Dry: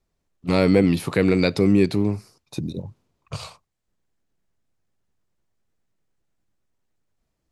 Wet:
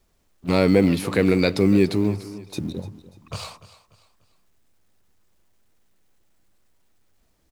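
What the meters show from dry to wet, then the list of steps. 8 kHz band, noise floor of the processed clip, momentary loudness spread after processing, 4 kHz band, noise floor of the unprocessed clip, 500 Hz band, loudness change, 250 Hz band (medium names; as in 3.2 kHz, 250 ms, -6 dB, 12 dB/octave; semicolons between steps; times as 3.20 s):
+2.0 dB, -65 dBFS, 18 LU, +1.0 dB, -77 dBFS, +0.5 dB, -0.5 dB, 0.0 dB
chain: companding laws mixed up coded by mu; peaking EQ 140 Hz -7.5 dB 0.32 oct; on a send: feedback delay 294 ms, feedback 37%, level -16.5 dB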